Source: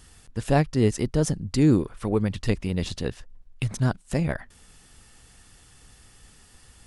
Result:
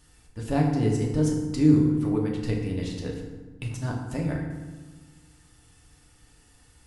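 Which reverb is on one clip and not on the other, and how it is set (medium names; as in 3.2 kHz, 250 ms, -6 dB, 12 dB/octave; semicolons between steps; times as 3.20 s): FDN reverb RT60 1.3 s, low-frequency decay 1.45×, high-frequency decay 0.6×, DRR -1.5 dB; trim -8.5 dB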